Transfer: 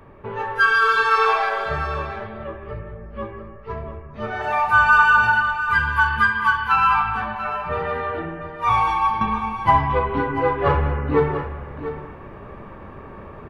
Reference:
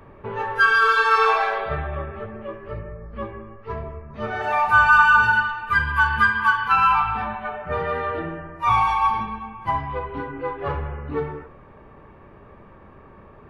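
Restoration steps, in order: inverse comb 691 ms -11.5 dB; trim 0 dB, from 9.21 s -8 dB

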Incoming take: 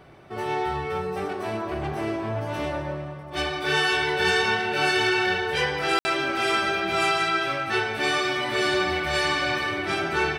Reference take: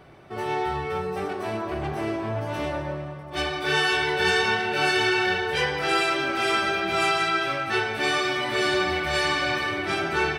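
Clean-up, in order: clip repair -13 dBFS; room tone fill 5.99–6.05 s

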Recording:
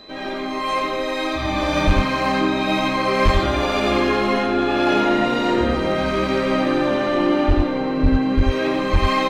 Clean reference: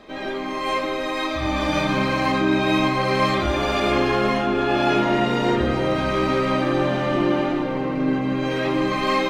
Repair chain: clip repair -8.5 dBFS; band-stop 4 kHz, Q 30; de-plosive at 1.86/3.24/7.47/8.02/8.36/8.92 s; inverse comb 88 ms -4 dB

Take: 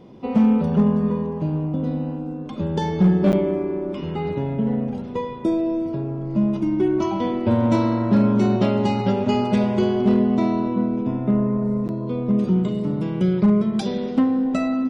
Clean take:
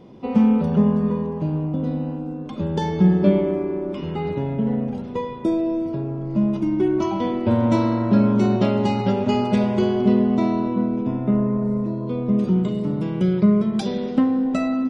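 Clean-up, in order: clip repair -10 dBFS; interpolate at 3.32/11.88 s, 9.1 ms

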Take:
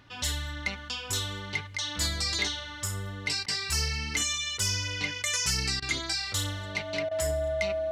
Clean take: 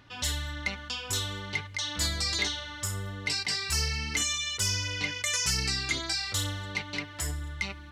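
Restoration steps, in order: band-stop 640 Hz, Q 30; interpolate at 3.46/5.80/7.09 s, 21 ms

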